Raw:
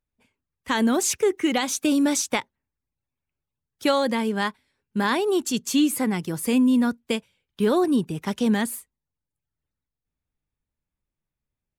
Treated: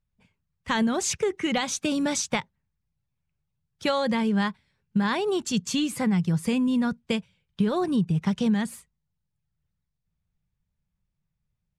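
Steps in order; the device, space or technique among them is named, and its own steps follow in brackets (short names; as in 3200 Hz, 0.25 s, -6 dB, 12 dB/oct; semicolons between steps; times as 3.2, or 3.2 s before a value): jukebox (LPF 6800 Hz 12 dB/oct; resonant low shelf 220 Hz +6.5 dB, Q 3; compressor, threshold -20 dBFS, peak gain reduction 8 dB)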